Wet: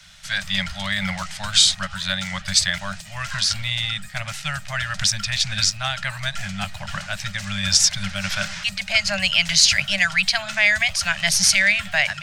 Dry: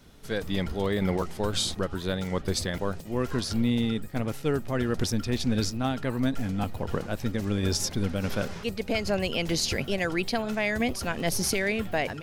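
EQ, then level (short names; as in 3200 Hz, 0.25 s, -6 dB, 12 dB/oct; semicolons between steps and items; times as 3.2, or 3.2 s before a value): Chebyshev band-stop 200–580 Hz, order 5; band shelf 3500 Hz +14.5 dB 3 oct; 0.0 dB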